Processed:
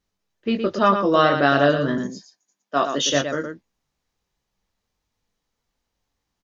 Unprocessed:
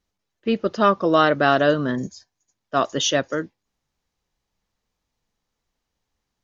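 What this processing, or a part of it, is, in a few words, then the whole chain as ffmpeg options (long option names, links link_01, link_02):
slapback doubling: -filter_complex "[0:a]asettb=1/sr,asplit=3[link_01][link_02][link_03];[link_01]atrim=end=1.984[link_04];[link_02]atrim=start=1.98:end=3.13,asetpts=PTS-STARTPTS,afade=type=in:duration=0.004:curve=qsin,afade=type=out:start_time=1.146:duration=0.004:curve=qsin,highpass=frequency=170:width=0.5412,highpass=frequency=170:width=1.3066[link_05];[link_03]atrim=start=3.126[link_06];[link_04][link_05]acrossfade=duration=0.004:curve1=hsin:curve2=qsin[link_07];[link_07][link_06]acrossfade=duration=0.004:curve1=qsin:curve2=hsin,asplit=3[link_08][link_09][link_10];[link_09]adelay=21,volume=-5.5dB[link_11];[link_10]adelay=115,volume=-7dB[link_12];[link_08][link_11][link_12]amix=inputs=3:normalize=0,volume=-1dB"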